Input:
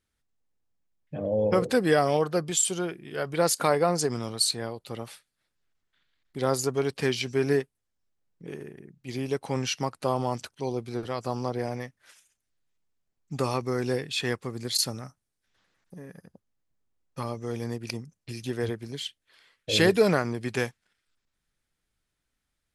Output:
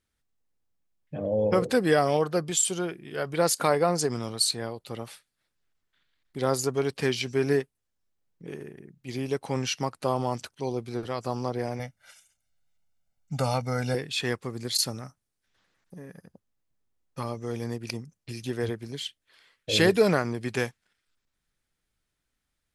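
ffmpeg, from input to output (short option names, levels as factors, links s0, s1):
-filter_complex "[0:a]asettb=1/sr,asplit=3[s0][s1][s2];[s0]atrim=end=11.794[s3];[s1]atrim=start=11.79:end=13.95,asetpts=PTS-STARTPTS,afade=t=in:d=0.004:c=qsin,afade=t=out:st=2.156:d=0.004:c=qsin,aecho=1:1:1.4:0.82,atrim=end_sample=95256[s4];[s2]atrim=start=13.946[s5];[s3][s4]acrossfade=d=0.004:c1=hsin:c2=qsin[s6];[s6][s5]acrossfade=d=0.004:c1=qsin:c2=hsin"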